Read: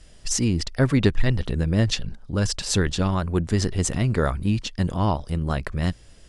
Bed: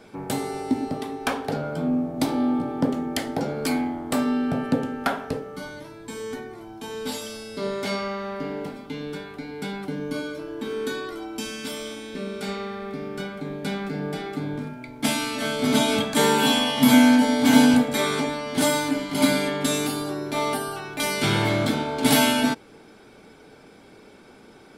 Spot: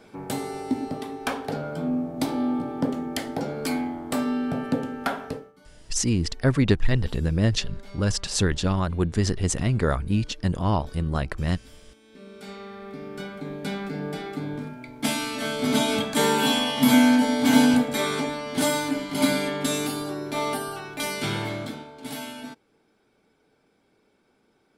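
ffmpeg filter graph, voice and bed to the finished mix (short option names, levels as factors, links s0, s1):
-filter_complex "[0:a]adelay=5650,volume=0.891[s0];[1:a]volume=6.31,afade=t=out:st=5.27:d=0.26:silence=0.125893,afade=t=in:st=11.99:d=1.5:silence=0.11885,afade=t=out:st=20.82:d=1.11:silence=0.177828[s1];[s0][s1]amix=inputs=2:normalize=0"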